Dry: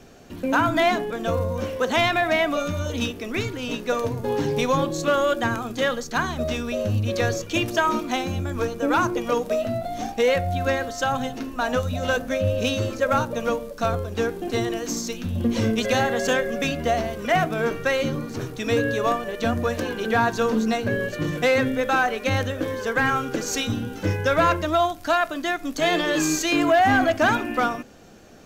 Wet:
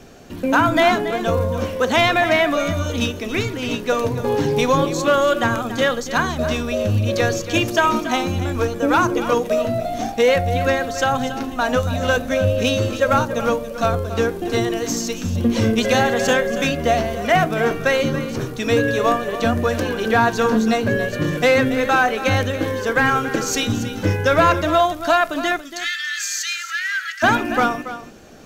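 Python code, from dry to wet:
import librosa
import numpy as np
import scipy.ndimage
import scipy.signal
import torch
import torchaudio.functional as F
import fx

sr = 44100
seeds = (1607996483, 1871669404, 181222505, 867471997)

y = fx.cheby_ripple_highpass(x, sr, hz=1300.0, ripple_db=6, at=(25.6, 27.22), fade=0.02)
y = y + 10.0 ** (-12.5 / 20.0) * np.pad(y, (int(281 * sr / 1000.0), 0))[:len(y)]
y = F.gain(torch.from_numpy(y), 4.5).numpy()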